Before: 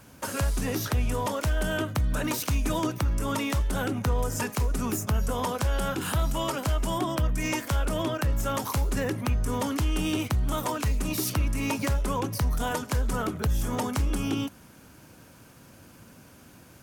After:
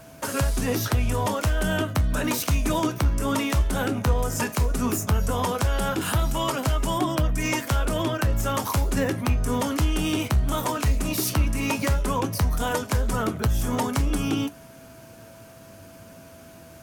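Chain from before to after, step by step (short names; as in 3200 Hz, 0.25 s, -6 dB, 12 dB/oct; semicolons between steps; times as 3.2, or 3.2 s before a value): flange 0.14 Hz, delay 6.4 ms, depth 8.9 ms, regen +66%; whine 660 Hz -56 dBFS; gain +8 dB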